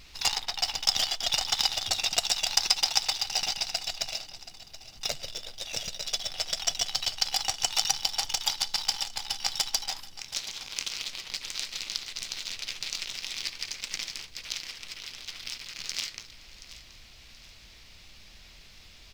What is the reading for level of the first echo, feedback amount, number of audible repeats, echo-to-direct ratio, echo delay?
-15.5 dB, 36%, 3, -15.0 dB, 0.727 s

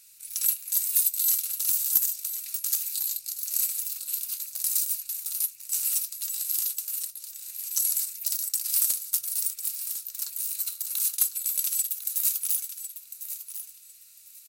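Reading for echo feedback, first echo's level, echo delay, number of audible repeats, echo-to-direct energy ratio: 19%, -11.0 dB, 1.051 s, 2, -11.0 dB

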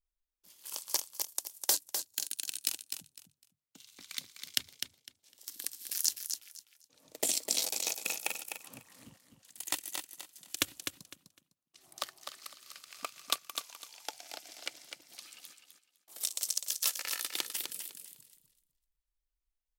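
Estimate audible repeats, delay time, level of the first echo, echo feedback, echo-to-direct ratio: 3, 0.253 s, -7.0 dB, 21%, -7.0 dB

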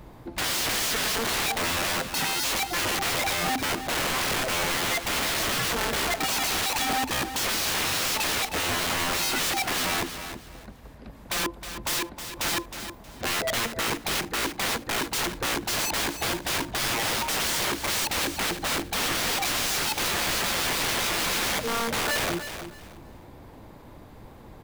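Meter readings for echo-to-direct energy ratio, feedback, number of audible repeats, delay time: -10.0 dB, 23%, 2, 0.315 s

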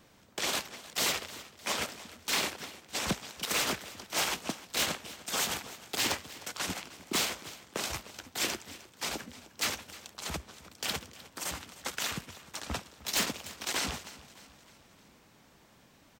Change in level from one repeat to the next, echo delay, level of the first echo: -5.5 dB, 0.306 s, -18.0 dB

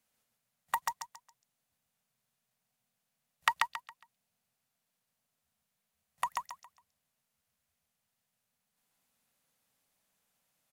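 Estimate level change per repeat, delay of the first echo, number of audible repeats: -11.0 dB, 0.137 s, 3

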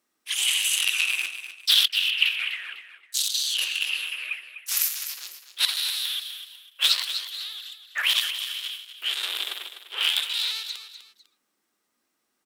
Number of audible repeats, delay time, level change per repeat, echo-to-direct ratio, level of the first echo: 2, 0.25 s, -10.0 dB, -10.5 dB, -11.0 dB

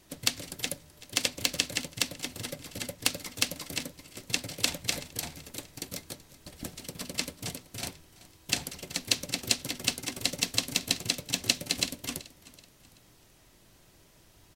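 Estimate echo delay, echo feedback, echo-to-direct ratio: 0.38 s, 42%, -18.5 dB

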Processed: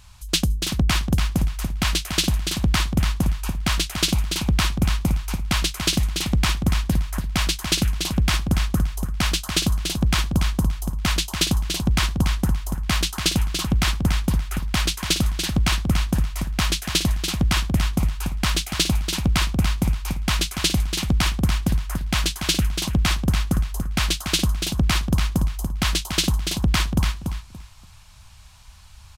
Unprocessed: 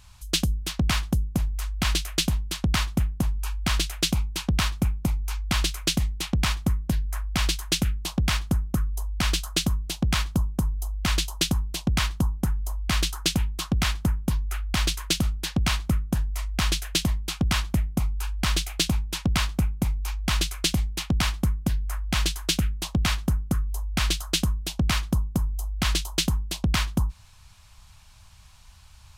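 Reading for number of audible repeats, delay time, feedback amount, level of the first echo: 3, 0.287 s, 22%, -6.5 dB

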